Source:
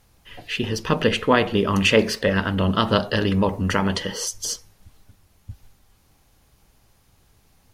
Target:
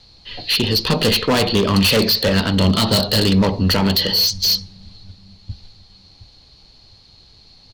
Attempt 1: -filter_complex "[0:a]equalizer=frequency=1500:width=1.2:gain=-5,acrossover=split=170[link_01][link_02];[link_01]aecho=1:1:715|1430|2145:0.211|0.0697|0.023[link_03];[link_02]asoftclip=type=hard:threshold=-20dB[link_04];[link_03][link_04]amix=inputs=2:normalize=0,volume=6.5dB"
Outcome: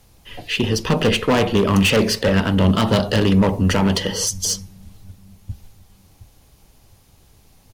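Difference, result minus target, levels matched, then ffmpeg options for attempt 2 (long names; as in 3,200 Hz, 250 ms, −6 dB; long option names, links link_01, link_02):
4,000 Hz band −5.5 dB
-filter_complex "[0:a]lowpass=frequency=4300:width_type=q:width=15,equalizer=frequency=1500:width=1.2:gain=-5,acrossover=split=170[link_01][link_02];[link_01]aecho=1:1:715|1430|2145:0.211|0.0697|0.023[link_03];[link_02]asoftclip=type=hard:threshold=-20dB[link_04];[link_03][link_04]amix=inputs=2:normalize=0,volume=6.5dB"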